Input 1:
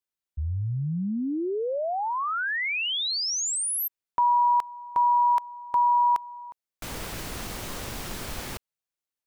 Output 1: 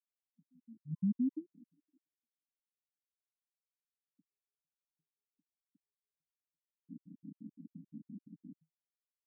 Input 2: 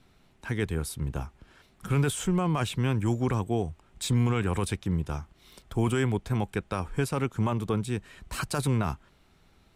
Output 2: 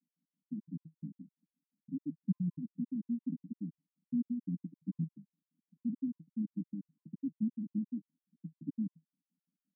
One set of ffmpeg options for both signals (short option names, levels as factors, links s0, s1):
-af "afwtdn=0.0398,asuperpass=centerf=220:order=20:qfactor=1.5,afftfilt=real='re*gt(sin(2*PI*5.8*pts/sr)*(1-2*mod(floor(b*sr/1024/1000),2)),0)':imag='im*gt(sin(2*PI*5.8*pts/sr)*(1-2*mod(floor(b*sr/1024/1000),2)),0)':win_size=1024:overlap=0.75,volume=0.841"